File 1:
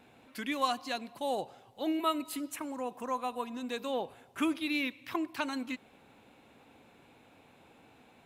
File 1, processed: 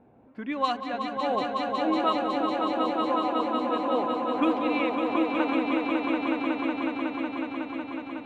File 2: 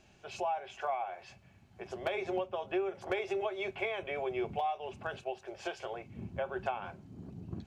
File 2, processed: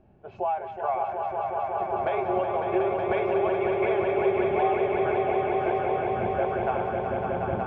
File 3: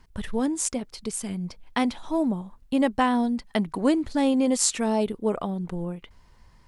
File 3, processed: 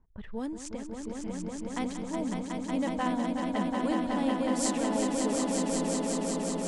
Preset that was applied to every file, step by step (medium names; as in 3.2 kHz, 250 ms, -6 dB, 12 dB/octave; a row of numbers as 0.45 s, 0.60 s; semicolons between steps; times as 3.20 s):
level-controlled noise filter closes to 750 Hz, open at -19.5 dBFS; echo with a slow build-up 184 ms, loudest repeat 5, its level -5 dB; peak normalisation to -12 dBFS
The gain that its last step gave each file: +4.0 dB, +6.5 dB, -10.0 dB